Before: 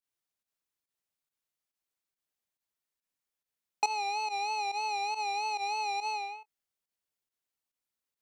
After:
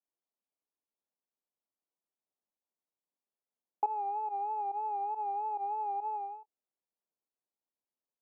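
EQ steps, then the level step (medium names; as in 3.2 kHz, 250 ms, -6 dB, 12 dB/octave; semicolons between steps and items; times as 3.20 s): high-pass 190 Hz 24 dB/octave; low-pass 1 kHz 24 dB/octave; 0.0 dB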